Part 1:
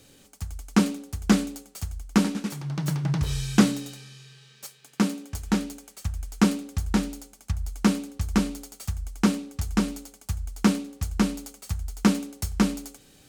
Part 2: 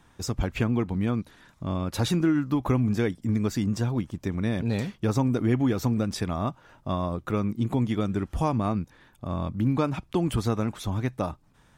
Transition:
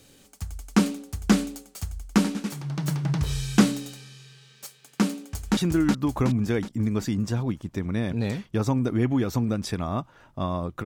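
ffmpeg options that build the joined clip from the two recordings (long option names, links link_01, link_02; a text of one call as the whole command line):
ffmpeg -i cue0.wav -i cue1.wav -filter_complex "[0:a]apad=whole_dur=10.85,atrim=end=10.85,atrim=end=5.572[link_01];[1:a]atrim=start=2.058:end=7.34[link_02];[link_01][link_02]acrossfade=duration=0.004:curve1=hsin:curve2=hsin,asplit=2[link_03][link_04];[link_04]afade=type=in:start_time=5.27:duration=0.01,afade=type=out:start_time=5.57:duration=0.01,aecho=0:1:370|740|1110|1480|1850|2220|2590:0.841395|0.420698|0.210349|0.105174|0.0525872|0.0262936|0.0131468[link_05];[link_03][link_05]amix=inputs=2:normalize=0" out.wav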